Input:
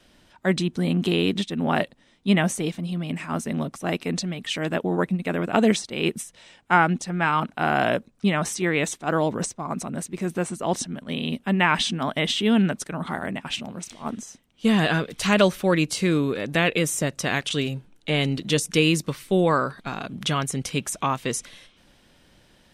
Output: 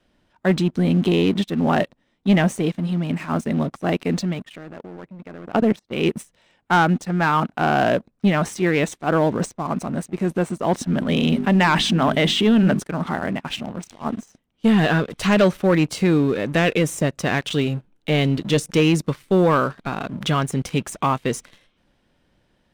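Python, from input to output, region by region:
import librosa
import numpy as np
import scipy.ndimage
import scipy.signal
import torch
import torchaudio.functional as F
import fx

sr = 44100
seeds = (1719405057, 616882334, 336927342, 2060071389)

y = fx.chain(x, sr, fx.lowpass(hz=2200.0, slope=6),
    fx.level_steps(step_db=20), at=(4.42, 5.92))
y = fx.chain(y, sr, fx.hum_notches(base_hz=50, count=8),
    fx.env_flatten(amount_pct=50), at=(10.87, 12.8))
y = fx.high_shelf(y, sr, hz=2900.0, db=-10.0)
y = fx.leveller(y, sr, passes=2)
y = y * 10.0 ** (-2.0 / 20.0)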